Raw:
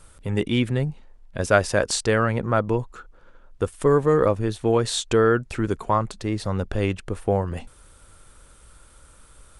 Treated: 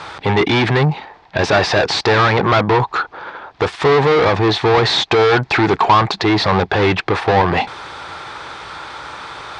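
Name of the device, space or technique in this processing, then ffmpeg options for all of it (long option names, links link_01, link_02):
overdrive pedal into a guitar cabinet: -filter_complex "[0:a]asplit=2[link_01][link_02];[link_02]highpass=frequency=720:poles=1,volume=37dB,asoftclip=type=tanh:threshold=-3.5dB[link_03];[link_01][link_03]amix=inputs=2:normalize=0,lowpass=frequency=6700:poles=1,volume=-6dB,highpass=83,equalizer=frequency=230:width_type=q:width=4:gain=-9,equalizer=frequency=540:width_type=q:width=4:gain=-8,equalizer=frequency=820:width_type=q:width=4:gain=7,equalizer=frequency=1400:width_type=q:width=4:gain=-4,equalizer=frequency=2900:width_type=q:width=4:gain=-6,lowpass=frequency=4300:width=0.5412,lowpass=frequency=4300:width=1.3066"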